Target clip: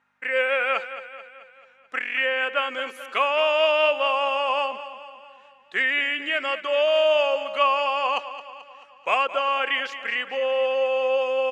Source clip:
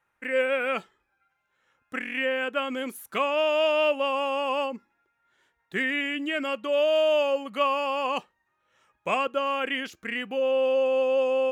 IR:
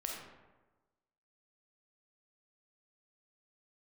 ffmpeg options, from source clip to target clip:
-filter_complex "[0:a]aeval=exprs='val(0)+0.00141*(sin(2*PI*50*n/s)+sin(2*PI*2*50*n/s)/2+sin(2*PI*3*50*n/s)/3+sin(2*PI*4*50*n/s)/4+sin(2*PI*5*50*n/s)/5)':channel_layout=same,highpass=660,lowpass=5500,asplit=2[link_01][link_02];[link_02]aecho=0:1:218|436|654|872|1090|1308:0.224|0.121|0.0653|0.0353|0.019|0.0103[link_03];[link_01][link_03]amix=inputs=2:normalize=0,volume=5.5dB"

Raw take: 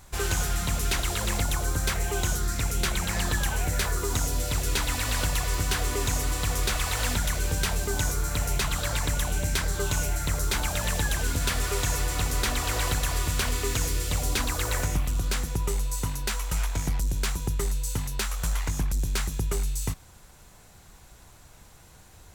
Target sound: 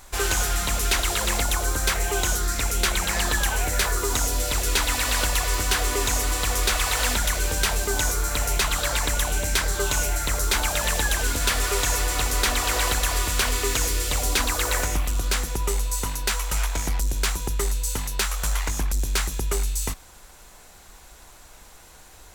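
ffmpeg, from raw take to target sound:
ffmpeg -i in.wav -af "equalizer=frequency=120:width=0.84:gain=-13,acontrast=48" out.wav

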